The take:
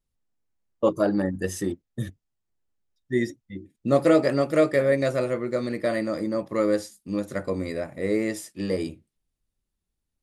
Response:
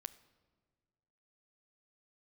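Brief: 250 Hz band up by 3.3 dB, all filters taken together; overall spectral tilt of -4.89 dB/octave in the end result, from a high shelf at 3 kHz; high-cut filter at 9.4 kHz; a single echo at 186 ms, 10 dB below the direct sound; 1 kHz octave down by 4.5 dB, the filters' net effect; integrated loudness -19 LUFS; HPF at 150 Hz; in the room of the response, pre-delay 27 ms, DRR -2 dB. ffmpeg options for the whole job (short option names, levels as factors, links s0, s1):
-filter_complex "[0:a]highpass=150,lowpass=9400,equalizer=f=250:t=o:g=5.5,equalizer=f=1000:t=o:g=-8,highshelf=f=3000:g=4.5,aecho=1:1:186:0.316,asplit=2[s0][s1];[1:a]atrim=start_sample=2205,adelay=27[s2];[s1][s2]afir=irnorm=-1:irlink=0,volume=2.11[s3];[s0][s3]amix=inputs=2:normalize=0,volume=1.19"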